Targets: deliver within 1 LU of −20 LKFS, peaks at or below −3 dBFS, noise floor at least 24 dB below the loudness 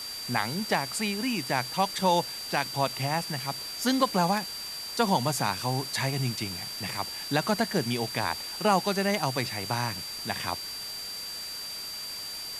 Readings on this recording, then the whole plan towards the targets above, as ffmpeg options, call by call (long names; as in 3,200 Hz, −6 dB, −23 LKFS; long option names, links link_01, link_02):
interfering tone 4,700 Hz; level of the tone −36 dBFS; background noise floor −38 dBFS; target noise floor −53 dBFS; integrated loudness −29.0 LKFS; sample peak −10.5 dBFS; target loudness −20.0 LKFS
→ -af "bandreject=frequency=4700:width=30"
-af "afftdn=noise_reduction=15:noise_floor=-38"
-af "volume=9dB,alimiter=limit=-3dB:level=0:latency=1"